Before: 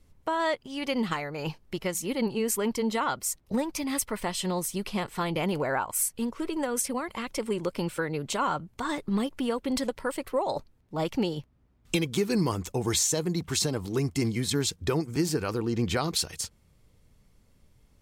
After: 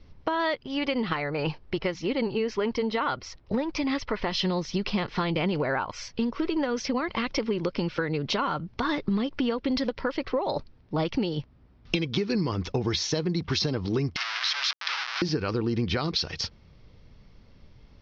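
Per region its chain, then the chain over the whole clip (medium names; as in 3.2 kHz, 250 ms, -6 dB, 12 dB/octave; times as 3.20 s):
0.64–4.32 s: low-pass 3.2 kHz 6 dB/octave + peaking EQ 200 Hz -6 dB 0.73 oct
14.16–15.22 s: Schmitt trigger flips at -42 dBFS + high-pass 1.2 kHz 24 dB/octave + treble shelf 10 kHz +5 dB
whole clip: steep low-pass 5.6 kHz 72 dB/octave; dynamic bell 790 Hz, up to -4 dB, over -40 dBFS, Q 1.2; compression, threshold -32 dBFS; trim +8.5 dB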